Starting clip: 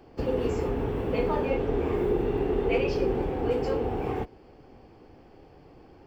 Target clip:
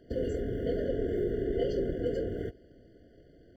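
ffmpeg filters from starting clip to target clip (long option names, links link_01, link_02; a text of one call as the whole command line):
ffmpeg -i in.wav -af "atempo=1.7,afftfilt=real='re*eq(mod(floor(b*sr/1024/710),2),0)':imag='im*eq(mod(floor(b*sr/1024/710),2),0)':win_size=1024:overlap=0.75,volume=-3.5dB" out.wav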